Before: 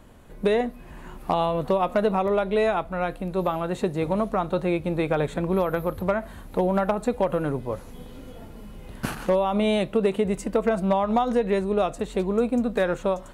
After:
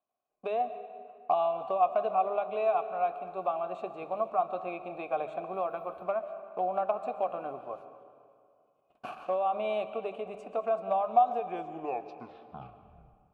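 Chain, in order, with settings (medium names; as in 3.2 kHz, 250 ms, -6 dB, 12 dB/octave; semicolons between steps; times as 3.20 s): tape stop on the ending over 2.02 s; band-stop 500 Hz, Q 12; gate -36 dBFS, range -26 dB; vowel filter a; hum notches 50/100/150/200 Hz; algorithmic reverb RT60 2.3 s, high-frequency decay 0.65×, pre-delay 95 ms, DRR 11 dB; trim +2.5 dB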